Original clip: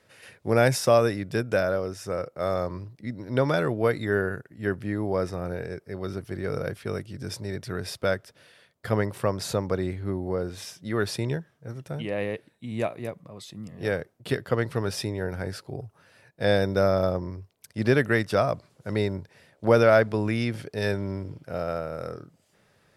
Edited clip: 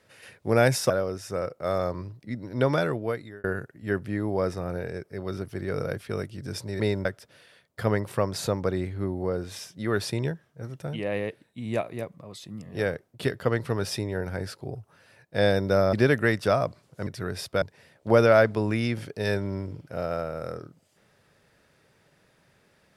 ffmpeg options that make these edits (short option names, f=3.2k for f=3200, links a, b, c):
-filter_complex "[0:a]asplit=8[a][b][c][d][e][f][g][h];[a]atrim=end=0.902[i];[b]atrim=start=1.658:end=4.2,asetpts=PTS-STARTPTS,afade=t=out:st=1.862:d=0.68[j];[c]atrim=start=4.2:end=7.562,asetpts=PTS-STARTPTS,afade=t=in:d=0.004:c=hsin[k];[d]atrim=start=18.938:end=19.192[l];[e]atrim=start=8.108:end=16.992[m];[f]atrim=start=17.798:end=18.942[n];[g]atrim=start=7.558:end=8.112[o];[h]atrim=start=19.188[p];[j][k]concat=n=2:v=0:a=1[q];[i][q]acrossfade=d=0.004:c1=hsin:c2=hsin[r];[r][l]acrossfade=d=0.004:c1=hsin:c2=hsin[s];[s][m]acrossfade=d=0.004:c1=hsin:c2=hsin[t];[t][n]acrossfade=d=0.004:c1=hsin:c2=hsin[u];[u][o]acrossfade=d=0.004:c1=hsin:c2=hsin[v];[v][p]acrossfade=d=0.004:c1=hsin:c2=hsin"